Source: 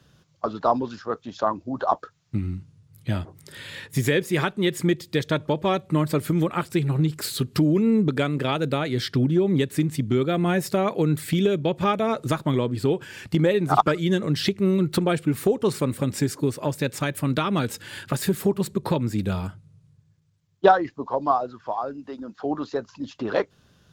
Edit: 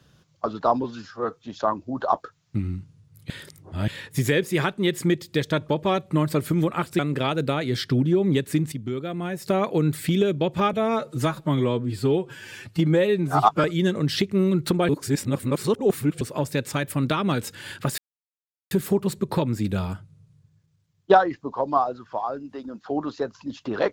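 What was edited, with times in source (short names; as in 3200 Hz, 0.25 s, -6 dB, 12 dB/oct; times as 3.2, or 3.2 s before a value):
0.84–1.26 stretch 1.5×
3.09–3.67 reverse
6.78–8.23 cut
9.96–10.7 gain -7.5 dB
11.97–13.91 stretch 1.5×
15.16–16.48 reverse
18.25 insert silence 0.73 s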